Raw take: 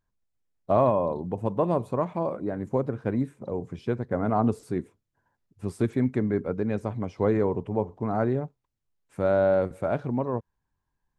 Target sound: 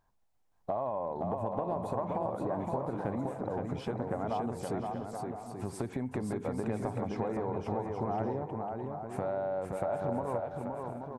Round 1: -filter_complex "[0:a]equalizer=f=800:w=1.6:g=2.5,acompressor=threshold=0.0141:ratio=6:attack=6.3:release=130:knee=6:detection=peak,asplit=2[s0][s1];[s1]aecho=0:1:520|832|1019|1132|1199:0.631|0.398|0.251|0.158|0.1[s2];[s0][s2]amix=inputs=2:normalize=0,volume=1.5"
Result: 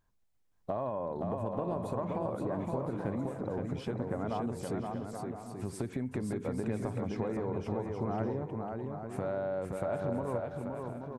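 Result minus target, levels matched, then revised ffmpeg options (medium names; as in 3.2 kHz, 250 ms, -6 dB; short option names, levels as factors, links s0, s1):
1 kHz band -3.5 dB
-filter_complex "[0:a]equalizer=f=800:w=1.6:g=12.5,acompressor=threshold=0.0141:ratio=6:attack=6.3:release=130:knee=6:detection=peak,asplit=2[s0][s1];[s1]aecho=0:1:520|832|1019|1132|1199:0.631|0.398|0.251|0.158|0.1[s2];[s0][s2]amix=inputs=2:normalize=0,volume=1.5"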